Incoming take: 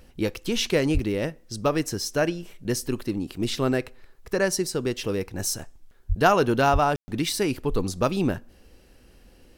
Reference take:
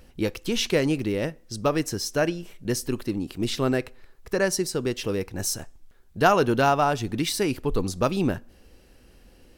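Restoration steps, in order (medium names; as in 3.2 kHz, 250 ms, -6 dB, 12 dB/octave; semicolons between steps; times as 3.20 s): 0.93–1.05 s: high-pass 140 Hz 24 dB/octave; 6.08–6.20 s: high-pass 140 Hz 24 dB/octave; 6.72–6.84 s: high-pass 140 Hz 24 dB/octave; room tone fill 6.96–7.08 s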